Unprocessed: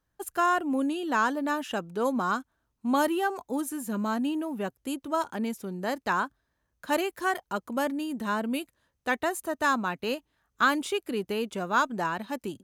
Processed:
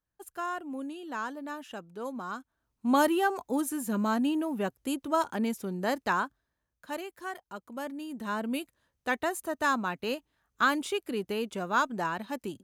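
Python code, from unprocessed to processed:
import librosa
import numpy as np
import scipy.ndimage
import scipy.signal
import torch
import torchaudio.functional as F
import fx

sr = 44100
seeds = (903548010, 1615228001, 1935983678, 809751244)

y = fx.gain(x, sr, db=fx.line((2.3, -10.0), (2.91, 1.0), (5.96, 1.0), (6.99, -10.5), (7.67, -10.5), (8.52, -2.0)))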